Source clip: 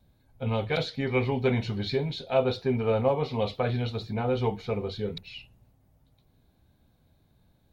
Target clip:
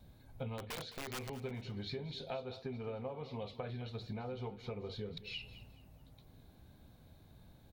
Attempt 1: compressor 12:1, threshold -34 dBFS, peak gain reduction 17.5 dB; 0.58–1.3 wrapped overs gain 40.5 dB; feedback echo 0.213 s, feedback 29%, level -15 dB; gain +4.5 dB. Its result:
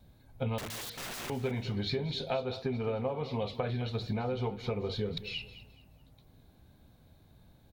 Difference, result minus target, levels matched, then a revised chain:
compressor: peak gain reduction -9 dB
compressor 12:1, threshold -44 dBFS, peak gain reduction 26.5 dB; 0.58–1.3 wrapped overs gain 40.5 dB; feedback echo 0.213 s, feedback 29%, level -15 dB; gain +4.5 dB

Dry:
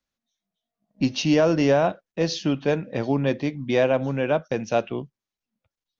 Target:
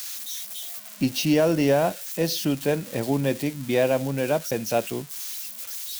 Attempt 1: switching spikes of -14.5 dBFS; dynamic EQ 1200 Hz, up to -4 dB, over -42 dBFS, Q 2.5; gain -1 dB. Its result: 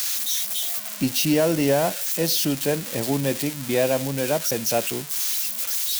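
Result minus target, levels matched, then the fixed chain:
switching spikes: distortion +9 dB
switching spikes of -23.5 dBFS; dynamic EQ 1200 Hz, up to -4 dB, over -42 dBFS, Q 2.5; gain -1 dB

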